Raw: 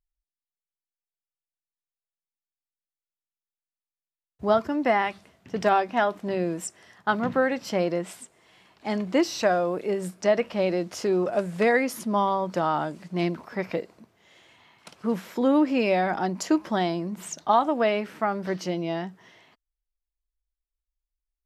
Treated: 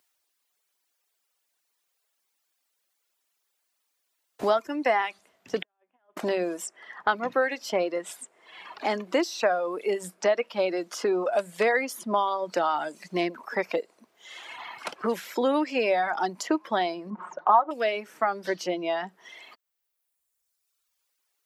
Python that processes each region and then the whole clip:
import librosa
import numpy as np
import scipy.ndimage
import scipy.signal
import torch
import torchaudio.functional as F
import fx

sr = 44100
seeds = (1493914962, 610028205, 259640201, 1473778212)

y = fx.chain(x, sr, fx.over_compress(threshold_db=-27.0, ratio=-0.5),
    fx.gate_flip(shuts_db=-29.0, range_db=-41),
    fx.brickwall_lowpass(high_hz=3600.0), at=(5.62, 6.17))
y = fx.chain(y, sr, fx.lowpass_res(hz=1100.0, q=2.4),
    fx.comb(ms=5.5, depth=0.58), at=(17.1, 17.71))
y = fx.dereverb_blind(y, sr, rt60_s=1.5)
y = scipy.signal.sosfilt(scipy.signal.butter(2, 390.0, 'highpass', fs=sr, output='sos'), y)
y = fx.band_squash(y, sr, depth_pct=70)
y = y * 10.0 ** (1.5 / 20.0)